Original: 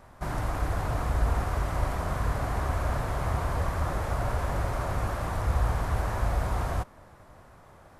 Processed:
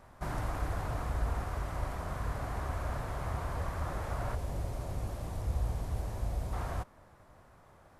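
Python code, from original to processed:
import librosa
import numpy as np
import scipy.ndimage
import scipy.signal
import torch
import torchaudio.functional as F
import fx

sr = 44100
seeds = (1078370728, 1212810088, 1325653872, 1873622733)

y = fx.peak_eq(x, sr, hz=1400.0, db=-12.0, octaves=1.6, at=(4.35, 6.53))
y = fx.rider(y, sr, range_db=10, speed_s=2.0)
y = F.gain(torch.from_numpy(y), -7.0).numpy()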